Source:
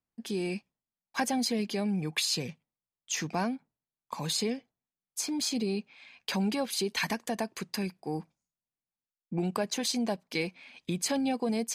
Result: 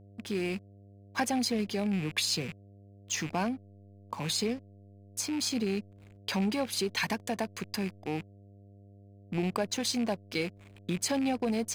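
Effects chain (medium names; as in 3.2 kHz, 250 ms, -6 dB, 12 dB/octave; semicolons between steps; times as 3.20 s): rattle on loud lows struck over -45 dBFS, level -31 dBFS; hysteresis with a dead band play -41 dBFS; mains buzz 100 Hz, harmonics 7, -54 dBFS -7 dB/octave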